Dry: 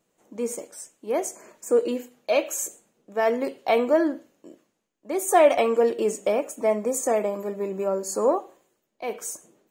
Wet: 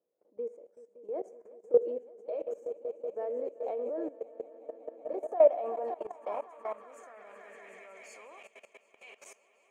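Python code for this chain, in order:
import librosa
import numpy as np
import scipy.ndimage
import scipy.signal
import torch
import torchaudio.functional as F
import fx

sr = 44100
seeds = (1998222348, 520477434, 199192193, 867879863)

y = fx.echo_swell(x, sr, ms=187, loudest=5, wet_db=-15.5)
y = fx.filter_sweep_bandpass(y, sr, from_hz=490.0, to_hz=2600.0, start_s=4.94, end_s=8.41, q=3.7)
y = fx.level_steps(y, sr, step_db=17)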